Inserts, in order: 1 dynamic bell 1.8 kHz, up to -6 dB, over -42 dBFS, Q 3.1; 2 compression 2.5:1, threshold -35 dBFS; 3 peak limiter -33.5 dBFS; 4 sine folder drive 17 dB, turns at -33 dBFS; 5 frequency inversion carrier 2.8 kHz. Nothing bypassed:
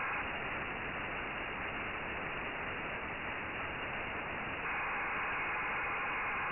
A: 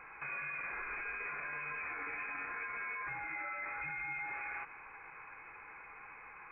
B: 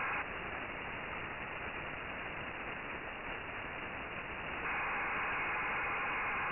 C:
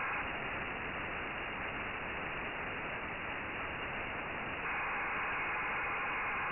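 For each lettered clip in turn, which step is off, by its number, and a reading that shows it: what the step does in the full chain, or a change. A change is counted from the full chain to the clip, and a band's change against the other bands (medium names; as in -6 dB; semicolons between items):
4, crest factor change +1.5 dB; 3, mean gain reduction 4.0 dB; 2, mean gain reduction 4.0 dB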